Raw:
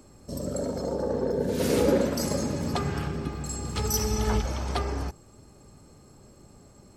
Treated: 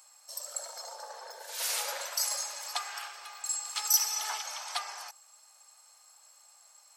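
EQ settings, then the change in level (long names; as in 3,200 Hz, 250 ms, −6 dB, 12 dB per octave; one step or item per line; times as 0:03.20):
Butterworth high-pass 730 Hz 36 dB per octave
high-shelf EQ 2,700 Hz +11 dB
−5.0 dB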